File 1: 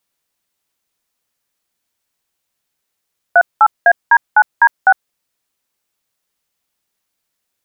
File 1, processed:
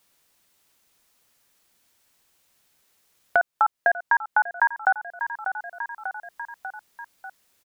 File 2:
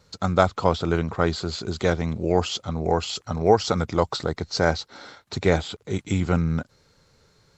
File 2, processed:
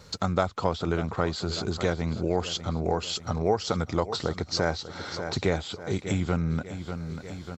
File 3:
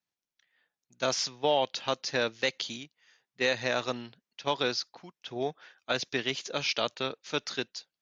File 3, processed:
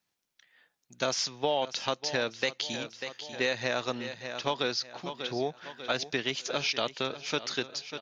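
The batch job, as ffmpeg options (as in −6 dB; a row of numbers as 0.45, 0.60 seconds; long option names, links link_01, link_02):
-filter_complex "[0:a]asplit=2[link_01][link_02];[link_02]aecho=0:1:593|1186|1779|2372:0.158|0.0682|0.0293|0.0126[link_03];[link_01][link_03]amix=inputs=2:normalize=0,acompressor=threshold=-42dB:ratio=2,volume=8.5dB"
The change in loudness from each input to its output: −11.5, −5.0, −0.5 LU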